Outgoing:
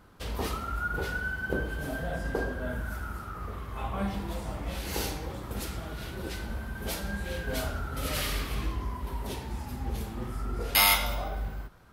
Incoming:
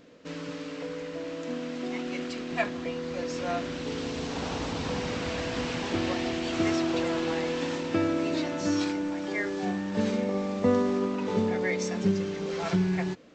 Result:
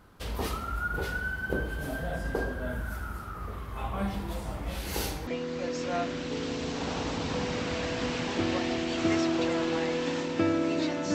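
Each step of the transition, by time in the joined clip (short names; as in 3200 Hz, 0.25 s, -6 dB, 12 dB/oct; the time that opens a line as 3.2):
outgoing
5.27 switch to incoming from 2.82 s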